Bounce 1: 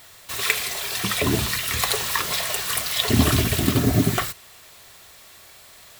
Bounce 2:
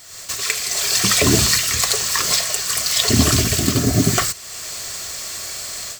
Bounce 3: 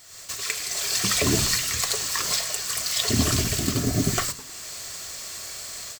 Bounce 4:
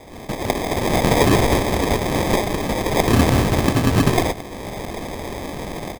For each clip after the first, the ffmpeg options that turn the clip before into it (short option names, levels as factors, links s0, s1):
-af "superequalizer=9b=0.631:14b=2.51:15b=3.16,dynaudnorm=f=150:g=3:m=5.62,volume=0.891"
-filter_complex "[0:a]asplit=5[s0][s1][s2][s3][s4];[s1]adelay=104,afreqshift=-130,volume=0.168[s5];[s2]adelay=208,afreqshift=-260,volume=0.0785[s6];[s3]adelay=312,afreqshift=-390,volume=0.0372[s7];[s4]adelay=416,afreqshift=-520,volume=0.0174[s8];[s0][s5][s6][s7][s8]amix=inputs=5:normalize=0,volume=0.447"
-af "acrusher=samples=31:mix=1:aa=0.000001,volume=2.24"